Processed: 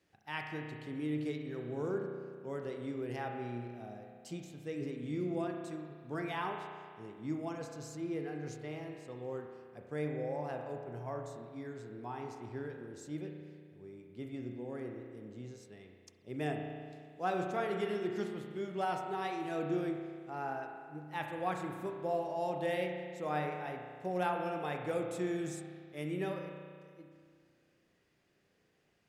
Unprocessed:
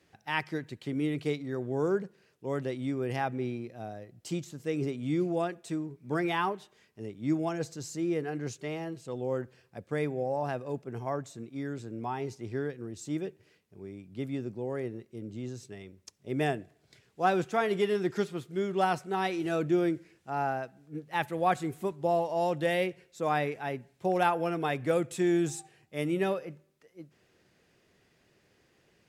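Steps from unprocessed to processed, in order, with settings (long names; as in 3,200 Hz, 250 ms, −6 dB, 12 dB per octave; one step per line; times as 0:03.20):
spring reverb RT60 2 s, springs 33 ms, chirp 35 ms, DRR 2.5 dB
level −9 dB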